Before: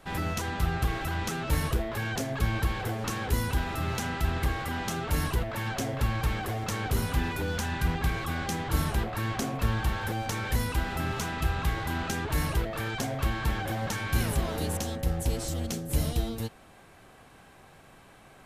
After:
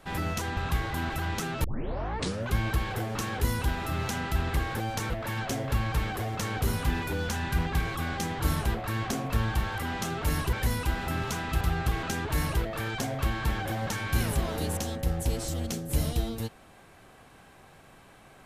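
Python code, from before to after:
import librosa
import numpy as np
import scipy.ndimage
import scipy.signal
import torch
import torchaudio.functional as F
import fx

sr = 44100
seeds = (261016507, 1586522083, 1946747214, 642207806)

y = fx.edit(x, sr, fx.swap(start_s=0.57, length_s=0.42, other_s=11.5, other_length_s=0.53),
    fx.tape_start(start_s=1.53, length_s=0.92),
    fx.swap(start_s=4.64, length_s=0.75, other_s=10.07, other_length_s=0.35), tone=tone)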